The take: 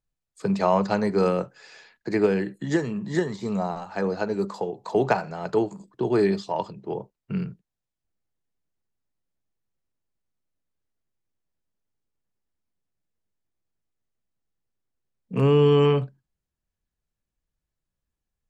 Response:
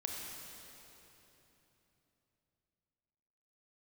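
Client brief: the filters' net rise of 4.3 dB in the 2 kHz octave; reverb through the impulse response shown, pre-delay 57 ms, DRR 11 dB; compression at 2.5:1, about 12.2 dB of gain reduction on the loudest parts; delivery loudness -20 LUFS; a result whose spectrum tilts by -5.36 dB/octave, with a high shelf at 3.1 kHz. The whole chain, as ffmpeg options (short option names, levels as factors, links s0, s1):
-filter_complex "[0:a]equalizer=f=2000:t=o:g=3.5,highshelf=f=3100:g=6.5,acompressor=threshold=0.0224:ratio=2.5,asplit=2[s0][s1];[1:a]atrim=start_sample=2205,adelay=57[s2];[s1][s2]afir=irnorm=-1:irlink=0,volume=0.251[s3];[s0][s3]amix=inputs=2:normalize=0,volume=5.01"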